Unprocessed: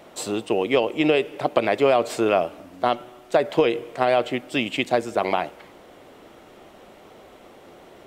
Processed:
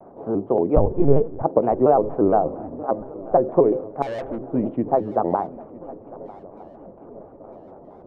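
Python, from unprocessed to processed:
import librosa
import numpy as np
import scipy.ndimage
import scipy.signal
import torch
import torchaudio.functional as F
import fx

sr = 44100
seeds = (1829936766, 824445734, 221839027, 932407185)

y = scipy.signal.sosfilt(scipy.signal.butter(4, 1000.0, 'lowpass', fs=sr, output='sos'), x)
y = fx.low_shelf(y, sr, hz=62.0, db=-8.5)
y = fx.hum_notches(y, sr, base_hz=60, count=7)
y = fx.lpc_vocoder(y, sr, seeds[0], excitation='pitch_kept', order=8, at=(0.76, 1.43))
y = fx.over_compress(y, sr, threshold_db=-28.0, ratio=-0.5, at=(2.45, 2.88), fade=0.02)
y = fx.tube_stage(y, sr, drive_db=30.0, bias=0.35, at=(4.02, 4.47))
y = fx.tilt_eq(y, sr, slope=-2.0)
y = fx.echo_swing(y, sr, ms=1274, ratio=3, feedback_pct=50, wet_db=-20.5)
y = fx.vibrato_shape(y, sr, shape='square', rate_hz=4.3, depth_cents=160.0)
y = F.gain(torch.from_numpy(y), 1.0).numpy()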